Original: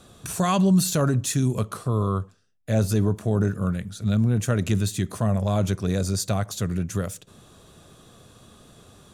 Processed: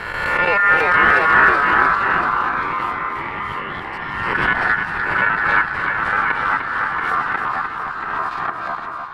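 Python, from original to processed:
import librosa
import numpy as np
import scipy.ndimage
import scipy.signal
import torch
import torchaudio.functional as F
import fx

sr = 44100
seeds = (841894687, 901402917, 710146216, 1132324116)

y = fx.spec_swells(x, sr, rise_s=0.73)
y = fx.highpass(y, sr, hz=400.0, slope=12, at=(2.0, 4.34))
y = fx.leveller(y, sr, passes=2)
y = fx.level_steps(y, sr, step_db=15)
y = y * np.sin(2.0 * np.pi * 1600.0 * np.arange(len(y)) / sr)
y = fx.echo_pitch(y, sr, ms=270, semitones=-2, count=3, db_per_echo=-3.0)
y = fx.air_absorb(y, sr, metres=440.0)
y = fx.echo_multitap(y, sr, ms=(300, 682), db=(-6.5, -6.5))
y = fx.pre_swell(y, sr, db_per_s=35.0)
y = y * 10.0 ** (5.5 / 20.0)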